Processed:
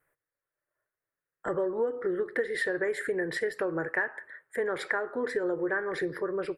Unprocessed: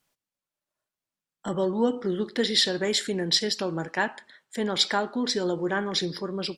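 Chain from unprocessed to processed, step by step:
drawn EQ curve 140 Hz 0 dB, 210 Hz −15 dB, 310 Hz 0 dB, 470 Hz +7 dB, 830 Hz −3 dB, 1,300 Hz +4 dB, 1,800 Hz +9 dB, 3,100 Hz −18 dB, 5,900 Hz −24 dB, 9,400 Hz −4 dB
downward compressor 6 to 1, threshold −26 dBFS, peak gain reduction 11.5 dB

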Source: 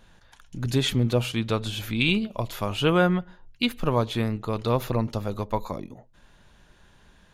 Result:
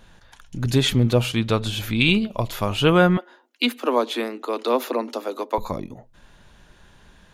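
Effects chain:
0:03.17–0:05.58: Butterworth high-pass 240 Hz 96 dB per octave
level +4.5 dB

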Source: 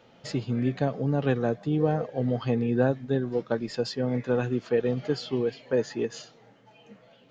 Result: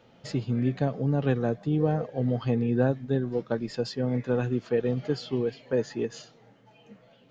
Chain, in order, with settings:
low-shelf EQ 250 Hz +5 dB
level −2.5 dB

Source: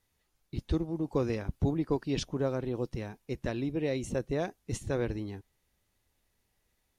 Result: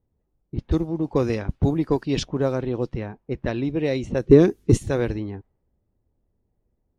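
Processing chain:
0:04.26–0:04.77: low shelf with overshoot 510 Hz +9 dB, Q 3
harmonic generator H 7 −37 dB, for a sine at −10 dBFS
low-pass that shuts in the quiet parts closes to 460 Hz, open at −26 dBFS
level +8.5 dB

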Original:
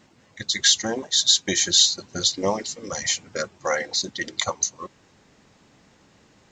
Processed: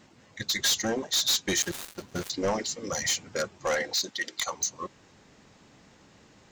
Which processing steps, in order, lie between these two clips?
0:01.62–0:02.30: gap after every zero crossing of 0.14 ms
0:03.92–0:04.51: high-pass filter 440 Hz → 1,400 Hz 6 dB per octave
soft clipping −21 dBFS, distortion −7 dB

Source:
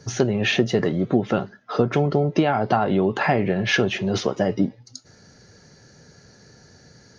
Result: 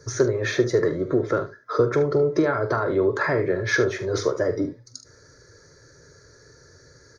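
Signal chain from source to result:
phaser with its sweep stopped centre 770 Hz, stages 6
ambience of single reflections 44 ms −12 dB, 74 ms −13 dB
level +2 dB

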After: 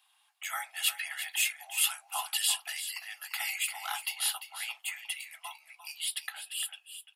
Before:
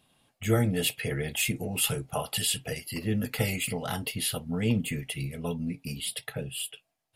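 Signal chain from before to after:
Butterworth high-pass 770 Hz 72 dB per octave
single-tap delay 346 ms −11 dB

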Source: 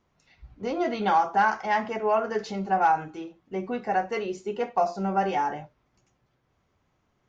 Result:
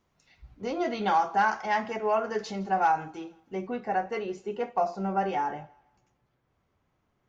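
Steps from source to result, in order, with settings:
high-shelf EQ 4,100 Hz +4.5 dB, from 0:03.67 −6 dB
feedback echo with a high-pass in the loop 161 ms, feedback 37%, high-pass 420 Hz, level −23 dB
level −2.5 dB

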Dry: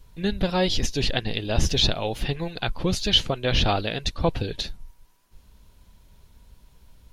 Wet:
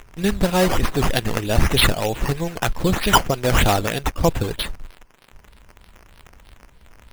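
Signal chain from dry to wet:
in parallel at −12 dB: bit reduction 6 bits
on the sum: surface crackle 310 per second −38 dBFS
sample-and-hold swept by an LFO 9×, swing 60% 3.2 Hz
level +3 dB

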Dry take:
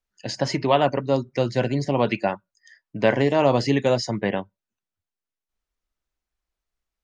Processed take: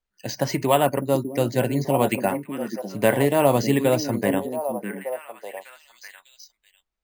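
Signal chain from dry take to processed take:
echo through a band-pass that steps 602 ms, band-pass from 260 Hz, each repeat 1.4 octaves, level −4 dB
bad sample-rate conversion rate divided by 4×, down filtered, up hold

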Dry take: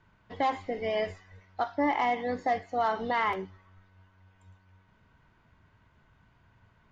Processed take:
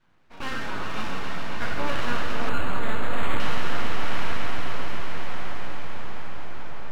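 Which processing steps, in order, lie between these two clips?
peak hold with a decay on every bin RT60 2.31 s
multi-voice chorus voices 2, 0.54 Hz, delay 12 ms, depth 3.5 ms
full-wave rectification
on a send: echo that builds up and dies away 137 ms, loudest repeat 5, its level −10.5 dB
on the sum: delay with pitch and tempo change per echo 84 ms, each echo −4 semitones, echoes 3, each echo −6 dB
0:02.49–0:03.40: linearly interpolated sample-rate reduction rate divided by 8×

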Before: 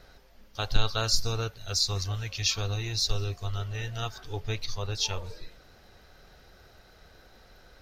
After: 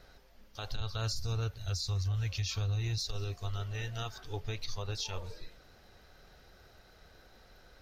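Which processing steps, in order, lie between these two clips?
0:00.80–0:02.98: parametric band 78 Hz +15 dB 1.1 octaves
downward compressor 2 to 1, threshold −26 dBFS, peak gain reduction 8 dB
brickwall limiter −23 dBFS, peak gain reduction 9.5 dB
level −3.5 dB

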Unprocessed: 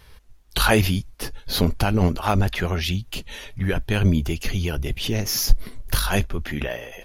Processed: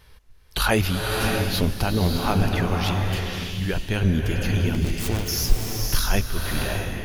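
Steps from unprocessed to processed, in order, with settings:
0:04.74–0:05.28: phase distortion by the signal itself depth 0.8 ms
slow-attack reverb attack 620 ms, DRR 1 dB
level −3 dB

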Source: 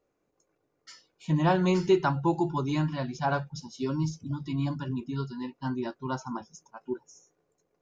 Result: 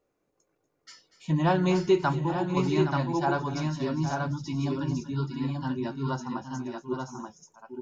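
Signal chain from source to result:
multi-tap delay 239/253/817/882/897 ms −16/−18/−10.5/−4/−19 dB
0:02.13–0:02.57: downward compressor 2 to 1, threshold −28 dBFS, peak gain reduction 5.5 dB

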